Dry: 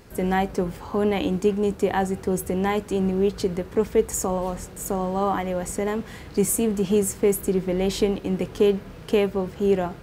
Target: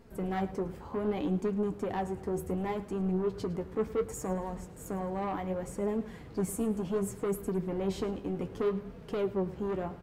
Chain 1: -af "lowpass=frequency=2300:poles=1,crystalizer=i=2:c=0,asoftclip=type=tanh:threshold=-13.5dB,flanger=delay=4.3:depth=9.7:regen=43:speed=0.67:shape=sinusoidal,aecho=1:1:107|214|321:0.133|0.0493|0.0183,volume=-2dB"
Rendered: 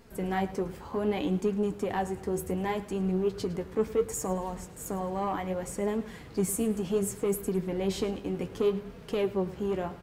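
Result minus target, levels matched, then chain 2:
soft clipping: distortion −7 dB; 2,000 Hz band +2.0 dB
-af "lowpass=frequency=900:poles=1,crystalizer=i=2:c=0,asoftclip=type=tanh:threshold=-20dB,flanger=delay=4.3:depth=9.7:regen=43:speed=0.67:shape=sinusoidal,aecho=1:1:107|214|321:0.133|0.0493|0.0183,volume=-2dB"

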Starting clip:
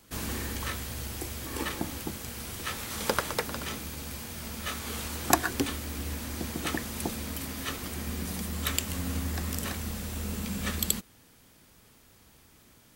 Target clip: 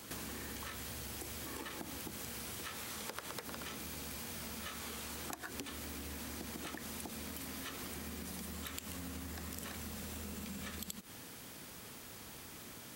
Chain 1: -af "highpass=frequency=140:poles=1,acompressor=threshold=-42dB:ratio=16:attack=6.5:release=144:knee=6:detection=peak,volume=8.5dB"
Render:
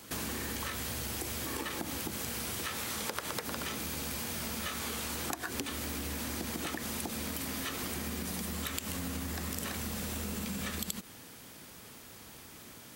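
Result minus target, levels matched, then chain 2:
downward compressor: peak gain reduction −7.5 dB
-af "highpass=frequency=140:poles=1,acompressor=threshold=-50dB:ratio=16:attack=6.5:release=144:knee=6:detection=peak,volume=8.5dB"

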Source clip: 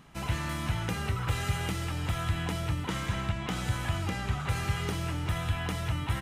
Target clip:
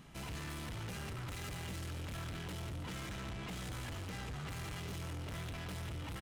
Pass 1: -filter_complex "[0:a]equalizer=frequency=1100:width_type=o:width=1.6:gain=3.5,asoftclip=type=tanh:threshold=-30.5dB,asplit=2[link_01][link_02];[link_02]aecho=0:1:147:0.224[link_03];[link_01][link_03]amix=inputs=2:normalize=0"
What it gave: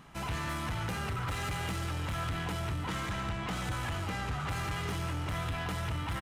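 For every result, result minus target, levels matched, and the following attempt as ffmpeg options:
1,000 Hz band +4.0 dB; soft clipping: distortion −5 dB
-filter_complex "[0:a]equalizer=frequency=1100:width_type=o:width=1.6:gain=-4.5,asoftclip=type=tanh:threshold=-30.5dB,asplit=2[link_01][link_02];[link_02]aecho=0:1:147:0.224[link_03];[link_01][link_03]amix=inputs=2:normalize=0"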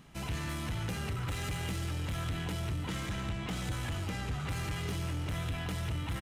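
soft clipping: distortion −5 dB
-filter_complex "[0:a]equalizer=frequency=1100:width_type=o:width=1.6:gain=-4.5,asoftclip=type=tanh:threshold=-41.5dB,asplit=2[link_01][link_02];[link_02]aecho=0:1:147:0.224[link_03];[link_01][link_03]amix=inputs=2:normalize=0"

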